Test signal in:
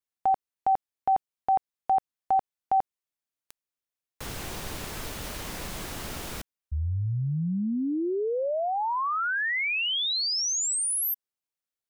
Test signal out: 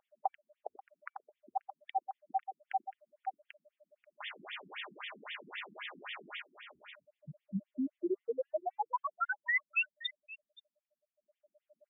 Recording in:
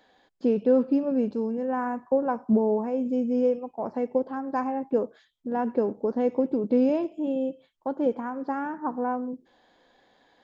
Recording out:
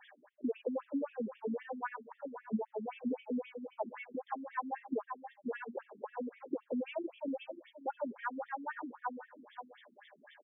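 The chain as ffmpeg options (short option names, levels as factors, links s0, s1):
-filter_complex "[0:a]highshelf=f=2600:g=9,acrossover=split=260[s0][s1];[s0]acompressor=mode=upward:threshold=0.00178:ratio=2.5:release=49:knee=2.83:detection=peak[s2];[s1]aecho=1:1:535:0.158[s3];[s2][s3]amix=inputs=2:normalize=0,aeval=exprs='val(0)+0.000794*sin(2*PI*600*n/s)':c=same,equalizer=f=180:w=0.44:g=-13.5,aecho=1:1:4.9:0.34,acompressor=threshold=0.0178:ratio=6:attack=3.9:release=372:knee=1:detection=peak,afftfilt=real='re*between(b*sr/1024,230*pow(2600/230,0.5+0.5*sin(2*PI*3.8*pts/sr))/1.41,230*pow(2600/230,0.5+0.5*sin(2*PI*3.8*pts/sr))*1.41)':imag='im*between(b*sr/1024,230*pow(2600/230,0.5+0.5*sin(2*PI*3.8*pts/sr))/1.41,230*pow(2600/230,0.5+0.5*sin(2*PI*3.8*pts/sr))*1.41)':win_size=1024:overlap=0.75,volume=2.51"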